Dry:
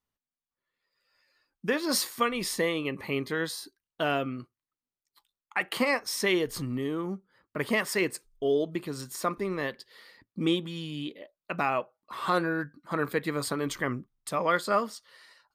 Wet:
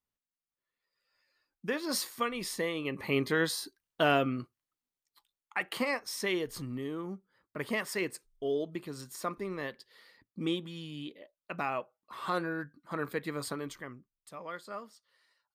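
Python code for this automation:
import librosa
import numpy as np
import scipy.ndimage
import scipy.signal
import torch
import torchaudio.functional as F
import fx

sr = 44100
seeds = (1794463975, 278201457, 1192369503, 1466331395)

y = fx.gain(x, sr, db=fx.line((2.73, -5.5), (3.2, 2.0), (4.39, 2.0), (5.97, -6.0), (13.54, -6.0), (13.94, -16.0)))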